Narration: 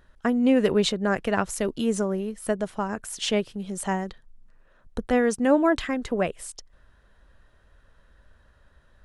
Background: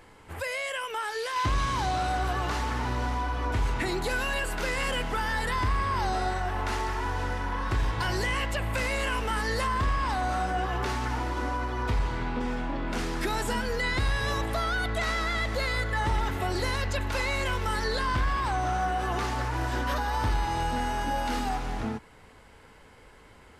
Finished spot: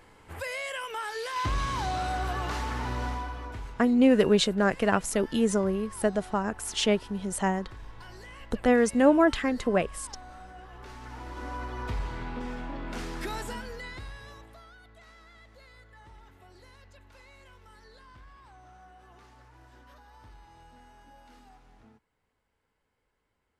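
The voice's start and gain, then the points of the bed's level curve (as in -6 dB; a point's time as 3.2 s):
3.55 s, 0.0 dB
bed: 3.09 s -2.5 dB
3.91 s -18.5 dB
10.72 s -18.5 dB
11.59 s -5.5 dB
13.35 s -5.5 dB
14.8 s -25.5 dB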